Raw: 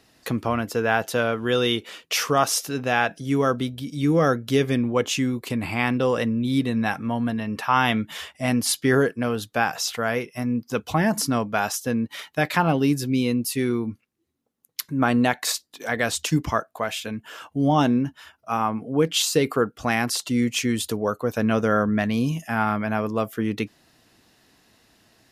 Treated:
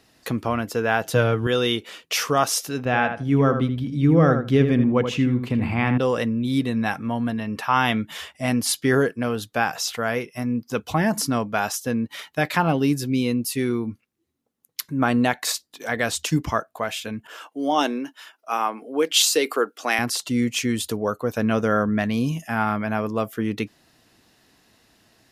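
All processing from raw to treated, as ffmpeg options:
ffmpeg -i in.wav -filter_complex "[0:a]asettb=1/sr,asplit=3[link_01][link_02][link_03];[link_01]atrim=end=1.054[link_04];[link_02]atrim=start=1.05:end=1.47,asetpts=PTS-STARTPTS,afade=type=in:duration=0.004:curve=qsin,afade=type=out:start_time=0.416:duration=0.004:curve=qsin,equalizer=frequency=83:width=0.55:gain=13.5,aecho=1:1:6.4:0.41,atrim=end_sample=18522[link_05];[link_03]atrim=start=1.466[link_06];[link_04][link_05]acrossfade=duration=0.004:curve1=hsin:curve2=qsin[link_07];[link_07][link_06]acrossfade=duration=0.004:curve1=qsin:curve2=hsin,asettb=1/sr,asplit=3[link_08][link_09][link_10];[link_08]atrim=end=2.854[link_11];[link_09]atrim=start=2.85:end=5.98,asetpts=PTS-STARTPTS,afade=type=in:duration=0.004:curve=qsin,afade=type=out:start_time=3.126:duration=0.004:curve=qsin,bass=frequency=250:gain=6,treble=frequency=4000:gain=-14,asplit=2[link_12][link_13];[link_13]adelay=80,lowpass=frequency=2400:poles=1,volume=-7dB,asplit=2[link_14][link_15];[link_15]adelay=80,lowpass=frequency=2400:poles=1,volume=0.18,asplit=2[link_16][link_17];[link_17]adelay=80,lowpass=frequency=2400:poles=1,volume=0.18[link_18];[link_12][link_14][link_16][link_18]amix=inputs=4:normalize=0,atrim=end_sample=138033[link_19];[link_10]atrim=start=5.976[link_20];[link_11][link_19]acrossfade=duration=0.004:curve1=hsin:curve2=qsin[link_21];[link_21][link_20]acrossfade=duration=0.004:curve1=qsin:curve2=hsin,asettb=1/sr,asplit=3[link_22][link_23][link_24];[link_22]atrim=end=17.274[link_25];[link_23]atrim=start=17.27:end=19.99,asetpts=PTS-STARTPTS,afade=type=in:duration=0.004:curve=qsin,afade=type=out:start_time=2.716:duration=0.004:curve=qsin,highpass=frequency=300:width=0.5412,highpass=frequency=300:width=1.3066,adynamicequalizer=threshold=0.0126:dfrequency=1800:dqfactor=0.7:tfrequency=1800:tqfactor=0.7:attack=5:release=100:ratio=0.375:range=2.5:mode=boostabove:tftype=highshelf[link_26];[link_24]atrim=start=19.986[link_27];[link_25][link_26]acrossfade=duration=0.004:curve1=hsin:curve2=qsin[link_28];[link_28][link_27]acrossfade=duration=0.004:curve1=qsin:curve2=hsin" out.wav

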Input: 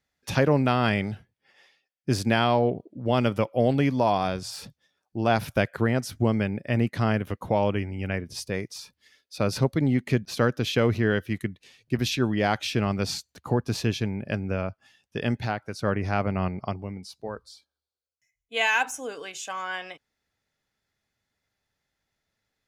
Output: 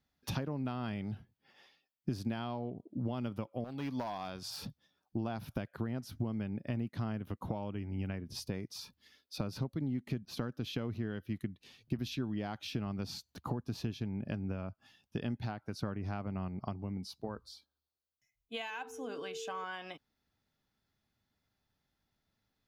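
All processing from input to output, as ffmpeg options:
ffmpeg -i in.wav -filter_complex "[0:a]asettb=1/sr,asplit=3[link_01][link_02][link_03];[link_01]atrim=end=3.644[link_04];[link_02]atrim=start=3.64:end=4.51,asetpts=PTS-STARTPTS,afade=type=in:duration=0.004:curve=qsin,afade=type=out:start_time=0.866:duration=0.004:curve=qsin,asoftclip=type=hard:threshold=-18dB,lowshelf=frequency=450:gain=-11.5[link_05];[link_03]atrim=start=4.506[link_06];[link_04][link_05]acrossfade=duration=0.004:curve1=hsin:curve2=qsin[link_07];[link_07][link_06]acrossfade=duration=0.004:curve1=qsin:curve2=hsin,asettb=1/sr,asplit=3[link_08][link_09][link_10];[link_08]atrim=end=18.704[link_11];[link_09]atrim=start=18.7:end=19.64,asetpts=PTS-STARTPTS,afade=type=in:duration=0.004:curve=qsin,afade=type=out:start_time=0.936:duration=0.004:curve=qsin,highshelf=frequency=6700:gain=-6,aeval=exprs='val(0)+0.0178*sin(2*PI*450*n/s)':channel_layout=same,bandreject=frequency=127.8:width_type=h:width=4,bandreject=frequency=255.6:width_type=h:width=4,bandreject=frequency=383.4:width_type=h:width=4[link_12];[link_10]atrim=start=19.636[link_13];[link_11][link_12]acrossfade=duration=0.004:curve1=hsin:curve2=qsin[link_14];[link_14][link_13]acrossfade=duration=0.004:curve1=qsin:curve2=hsin,acompressor=threshold=-34dB:ratio=12,equalizer=frequency=250:width_type=o:width=1:gain=3,equalizer=frequency=500:width_type=o:width=1:gain=-6,equalizer=frequency=2000:width_type=o:width=1:gain=-8,equalizer=frequency=8000:width_type=o:width=1:gain=-11,volume=1.5dB" out.wav

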